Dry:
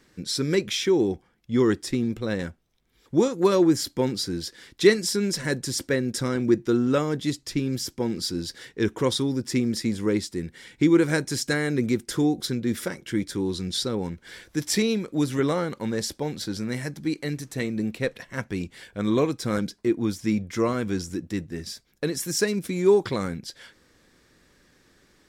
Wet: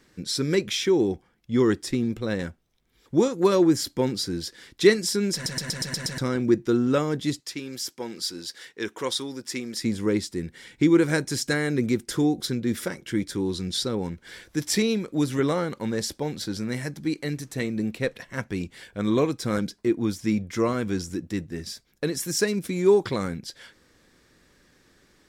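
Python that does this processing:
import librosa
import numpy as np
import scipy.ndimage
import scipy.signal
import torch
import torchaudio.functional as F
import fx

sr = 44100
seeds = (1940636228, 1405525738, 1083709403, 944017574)

y = fx.highpass(x, sr, hz=760.0, slope=6, at=(7.4, 9.82))
y = fx.edit(y, sr, fx.stutter_over(start_s=5.34, slice_s=0.12, count=7), tone=tone)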